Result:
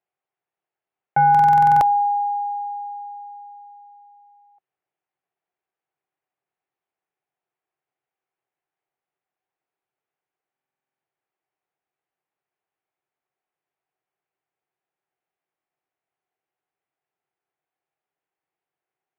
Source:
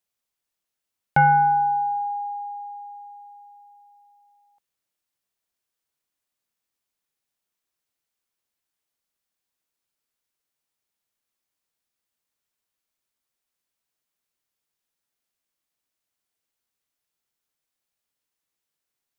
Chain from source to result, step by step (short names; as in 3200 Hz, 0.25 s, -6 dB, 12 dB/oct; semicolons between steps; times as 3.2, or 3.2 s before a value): limiter -17.5 dBFS, peak gain reduction 7 dB; speaker cabinet 120–2500 Hz, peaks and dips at 140 Hz +5 dB, 230 Hz -9 dB, 380 Hz +8 dB, 760 Hz +10 dB; stuck buffer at 1.3/10.52, samples 2048, times 10